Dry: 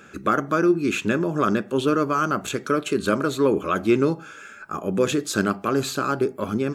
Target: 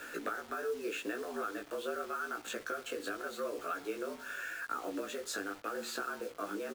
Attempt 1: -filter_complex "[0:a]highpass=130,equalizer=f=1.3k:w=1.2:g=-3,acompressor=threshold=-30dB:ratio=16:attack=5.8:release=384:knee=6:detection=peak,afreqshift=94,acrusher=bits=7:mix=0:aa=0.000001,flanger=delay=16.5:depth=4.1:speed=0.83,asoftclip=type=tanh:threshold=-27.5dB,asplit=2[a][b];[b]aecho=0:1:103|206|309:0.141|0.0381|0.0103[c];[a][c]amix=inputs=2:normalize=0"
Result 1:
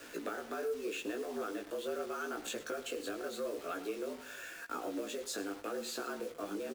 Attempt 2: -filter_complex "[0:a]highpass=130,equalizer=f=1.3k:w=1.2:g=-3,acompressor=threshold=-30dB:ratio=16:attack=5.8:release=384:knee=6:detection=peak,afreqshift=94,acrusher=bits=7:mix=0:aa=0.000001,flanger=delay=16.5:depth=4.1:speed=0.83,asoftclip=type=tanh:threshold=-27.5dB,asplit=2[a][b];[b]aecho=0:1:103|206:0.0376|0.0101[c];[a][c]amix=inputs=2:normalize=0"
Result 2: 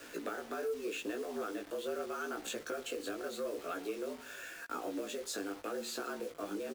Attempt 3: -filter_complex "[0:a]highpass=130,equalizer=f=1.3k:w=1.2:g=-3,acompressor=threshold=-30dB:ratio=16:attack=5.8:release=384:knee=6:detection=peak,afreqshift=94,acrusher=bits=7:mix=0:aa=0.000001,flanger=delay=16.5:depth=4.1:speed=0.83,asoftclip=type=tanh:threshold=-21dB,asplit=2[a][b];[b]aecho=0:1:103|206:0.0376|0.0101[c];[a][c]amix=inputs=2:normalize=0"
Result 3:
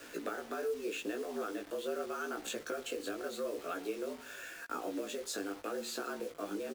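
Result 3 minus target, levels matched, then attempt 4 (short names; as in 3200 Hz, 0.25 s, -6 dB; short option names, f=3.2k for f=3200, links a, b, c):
1000 Hz band -3.0 dB
-filter_complex "[0:a]highpass=130,equalizer=f=1.3k:w=1.2:g=7,acompressor=threshold=-30dB:ratio=16:attack=5.8:release=384:knee=6:detection=peak,afreqshift=94,acrusher=bits=7:mix=0:aa=0.000001,flanger=delay=16.5:depth=4.1:speed=0.83,asoftclip=type=tanh:threshold=-21dB,asplit=2[a][b];[b]aecho=0:1:103|206:0.0376|0.0101[c];[a][c]amix=inputs=2:normalize=0"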